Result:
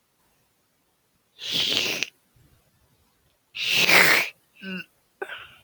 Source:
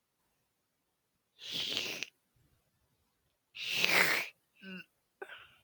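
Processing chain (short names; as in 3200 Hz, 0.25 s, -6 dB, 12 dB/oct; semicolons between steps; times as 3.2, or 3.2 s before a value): maximiser +14 dB; gain -1 dB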